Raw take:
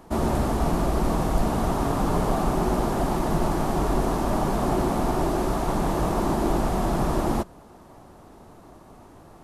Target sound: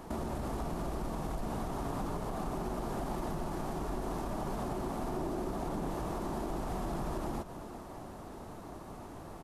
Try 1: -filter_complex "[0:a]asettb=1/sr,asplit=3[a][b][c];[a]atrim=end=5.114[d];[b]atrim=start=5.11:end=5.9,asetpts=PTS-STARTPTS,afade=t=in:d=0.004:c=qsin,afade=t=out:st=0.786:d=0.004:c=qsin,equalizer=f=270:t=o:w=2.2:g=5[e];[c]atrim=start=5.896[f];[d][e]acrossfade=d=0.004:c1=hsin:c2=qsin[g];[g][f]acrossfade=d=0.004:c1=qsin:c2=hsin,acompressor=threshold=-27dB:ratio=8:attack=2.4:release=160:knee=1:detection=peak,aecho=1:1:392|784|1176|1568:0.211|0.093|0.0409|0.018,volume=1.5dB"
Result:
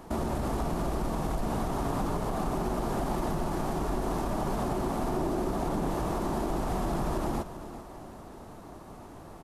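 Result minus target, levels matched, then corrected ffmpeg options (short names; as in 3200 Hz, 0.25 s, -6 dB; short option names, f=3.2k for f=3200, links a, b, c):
compressor: peak gain reduction -6 dB
-filter_complex "[0:a]asettb=1/sr,asplit=3[a][b][c];[a]atrim=end=5.114[d];[b]atrim=start=5.11:end=5.9,asetpts=PTS-STARTPTS,afade=t=in:d=0.004:c=qsin,afade=t=out:st=0.786:d=0.004:c=qsin,equalizer=f=270:t=o:w=2.2:g=5[e];[c]atrim=start=5.896[f];[d][e]acrossfade=d=0.004:c1=hsin:c2=qsin[g];[g][f]acrossfade=d=0.004:c1=qsin:c2=hsin,acompressor=threshold=-34dB:ratio=8:attack=2.4:release=160:knee=1:detection=peak,aecho=1:1:392|784|1176|1568:0.211|0.093|0.0409|0.018,volume=1.5dB"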